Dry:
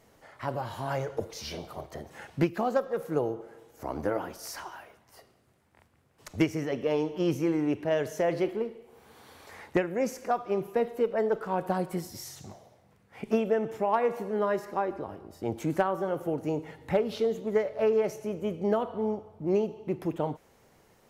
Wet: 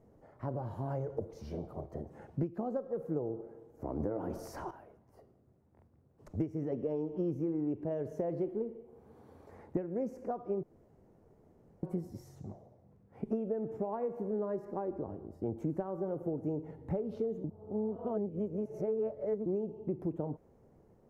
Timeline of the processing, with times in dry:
4.00–4.71 s: level flattener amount 50%
10.63–11.83 s: room tone
17.44–19.46 s: reverse
whole clip: tilt shelf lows +10 dB, about 1.3 kHz; compression 5:1, threshold -23 dBFS; FFT filter 410 Hz 0 dB, 3.4 kHz -10 dB, 6.3 kHz -4 dB; trim -8 dB

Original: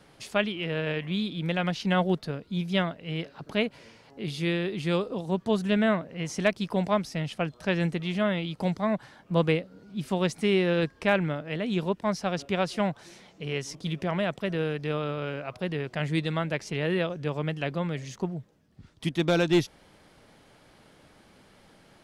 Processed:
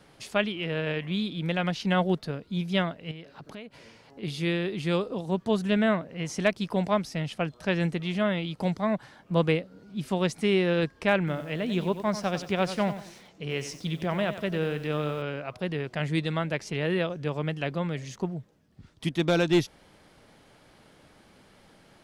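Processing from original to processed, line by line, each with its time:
3.11–4.23 s: compression 4:1, threshold -40 dBFS
11.18–15.22 s: bit-crushed delay 93 ms, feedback 35%, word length 8-bit, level -11 dB

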